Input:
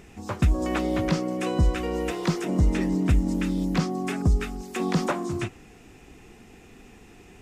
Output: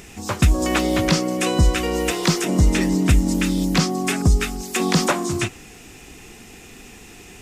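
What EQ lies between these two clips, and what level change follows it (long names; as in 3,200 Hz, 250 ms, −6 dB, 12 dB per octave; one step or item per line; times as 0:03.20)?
high-shelf EQ 2,600 Hz +11.5 dB
+5.0 dB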